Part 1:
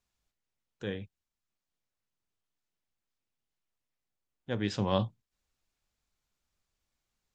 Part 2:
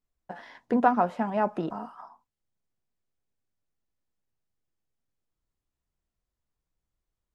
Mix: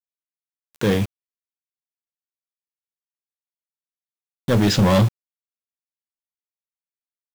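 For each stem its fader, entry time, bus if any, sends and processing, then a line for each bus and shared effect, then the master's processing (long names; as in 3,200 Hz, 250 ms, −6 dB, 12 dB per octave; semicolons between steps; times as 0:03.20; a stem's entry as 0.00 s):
+1.5 dB, 0.00 s, no send, leveller curve on the samples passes 5; upward compression, threshold −32 dBFS
−19.0 dB, 0.00 s, no send, automatic ducking −7 dB, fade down 1.00 s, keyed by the first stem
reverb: not used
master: parametric band 160 Hz +3.5 dB 1.7 octaves; bit reduction 6 bits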